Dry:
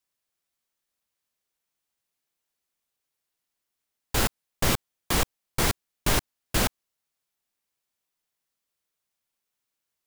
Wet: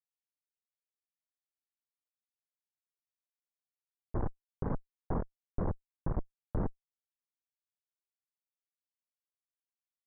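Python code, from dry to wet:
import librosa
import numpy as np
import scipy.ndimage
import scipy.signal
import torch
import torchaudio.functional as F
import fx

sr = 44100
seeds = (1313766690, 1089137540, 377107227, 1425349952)

y = fx.bit_reversed(x, sr, seeds[0], block=64)
y = fx.hum_notches(y, sr, base_hz=60, count=5)
y = fx.quant_dither(y, sr, seeds[1], bits=6, dither='none')
y = fx.schmitt(y, sr, flips_db=-21.0)
y = scipy.ndimage.gaussian_filter1d(y, 8.8, mode='constant')
y = F.gain(torch.from_numpy(y), 5.0).numpy()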